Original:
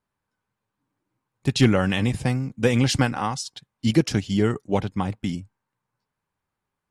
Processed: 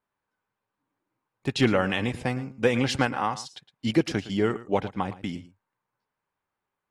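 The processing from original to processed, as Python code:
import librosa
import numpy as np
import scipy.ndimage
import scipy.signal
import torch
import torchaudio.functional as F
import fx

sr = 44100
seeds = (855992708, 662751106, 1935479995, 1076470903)

p1 = fx.bass_treble(x, sr, bass_db=-9, treble_db=-9)
y = p1 + fx.echo_single(p1, sr, ms=112, db=-16.0, dry=0)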